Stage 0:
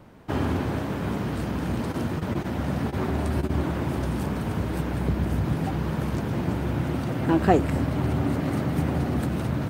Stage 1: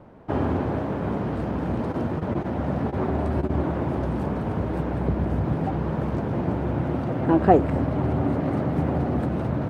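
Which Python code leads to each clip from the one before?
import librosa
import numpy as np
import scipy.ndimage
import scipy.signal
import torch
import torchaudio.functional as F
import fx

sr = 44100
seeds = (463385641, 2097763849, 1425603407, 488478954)

y = fx.lowpass(x, sr, hz=1400.0, slope=6)
y = fx.peak_eq(y, sr, hz=630.0, db=5.5, octaves=1.7)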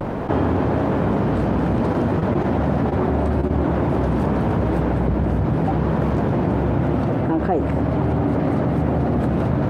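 y = fx.rider(x, sr, range_db=10, speed_s=0.5)
y = fx.vibrato(y, sr, rate_hz=0.53, depth_cents=41.0)
y = fx.env_flatten(y, sr, amount_pct=70)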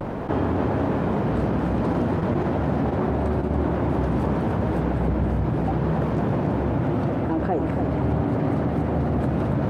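y = x + 10.0 ** (-7.5 / 20.0) * np.pad(x, (int(281 * sr / 1000.0), 0))[:len(x)]
y = y * 10.0 ** (-4.0 / 20.0)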